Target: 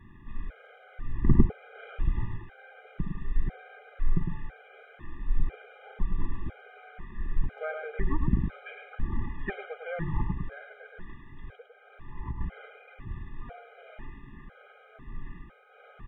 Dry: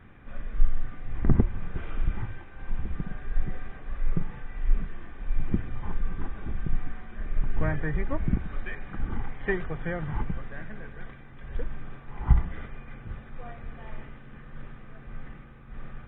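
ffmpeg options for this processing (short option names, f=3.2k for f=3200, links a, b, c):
-filter_complex "[0:a]asettb=1/sr,asplit=3[a][b][c];[a]atrim=end=10.664[d];[b]atrim=start=10.66:end=12.41,asetpts=PTS-STARTPTS,afade=t=in:d=0.004:c=qsin,afade=t=out:st=1.746:d=0.004:c=qsin,acompressor=threshold=-33dB:ratio=6[e];[c]atrim=start=12.406[f];[d][e]acrossfade=d=0.004:c1=hsin:c2=qsin[g];[g][f]acrossfade=d=0.004:c1=qsin:c2=hsin,aecho=1:1:105:0.531,afftfilt=real='re*gt(sin(2*PI*1*pts/sr)*(1-2*mod(floor(b*sr/1024/410),2)),0)':imag='im*gt(sin(2*PI*1*pts/sr)*(1-2*mod(floor(b*sr/1024/410),2)),0)':win_size=1024:overlap=0.75"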